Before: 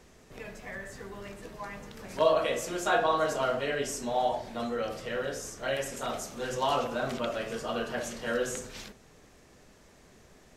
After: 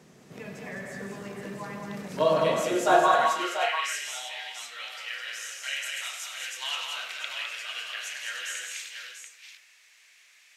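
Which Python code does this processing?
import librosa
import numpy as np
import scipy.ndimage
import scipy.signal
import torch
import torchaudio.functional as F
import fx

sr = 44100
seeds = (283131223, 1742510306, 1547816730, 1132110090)

y = fx.filter_sweep_highpass(x, sr, from_hz=160.0, to_hz=2300.0, start_s=2.54, end_s=3.28, q=2.6)
y = fx.echo_multitap(y, sr, ms=(95, 163, 208, 304, 689), db=(-10.5, -9.0, -4.5, -9.5, -7.5))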